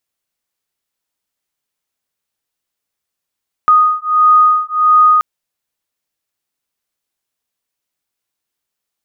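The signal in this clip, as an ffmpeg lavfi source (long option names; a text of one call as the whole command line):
ffmpeg -f lavfi -i "aevalsrc='0.299*(sin(2*PI*1240*t)+sin(2*PI*1241.5*t))':duration=1.53:sample_rate=44100" out.wav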